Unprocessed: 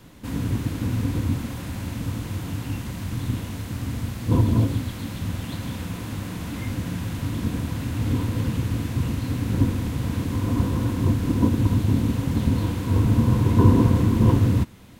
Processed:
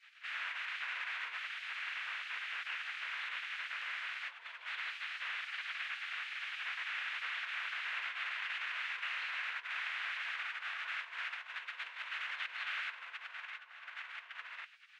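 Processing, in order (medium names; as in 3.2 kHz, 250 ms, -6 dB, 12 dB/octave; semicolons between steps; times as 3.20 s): compressor with a negative ratio -24 dBFS, ratio -1; spectral gate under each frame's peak -25 dB weak; Butterworth band-pass 2 kHz, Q 1.4; trim +5 dB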